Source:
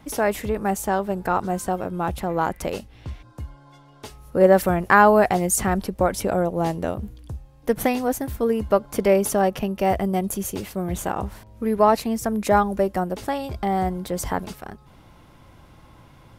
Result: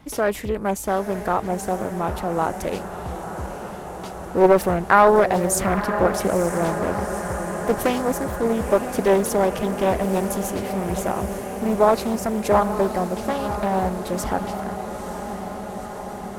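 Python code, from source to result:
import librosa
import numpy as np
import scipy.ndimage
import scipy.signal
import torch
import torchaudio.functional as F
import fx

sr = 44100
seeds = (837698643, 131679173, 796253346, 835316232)

y = fx.echo_diffused(x, sr, ms=939, feedback_pct=76, wet_db=-10.0)
y = fx.doppler_dist(y, sr, depth_ms=0.42)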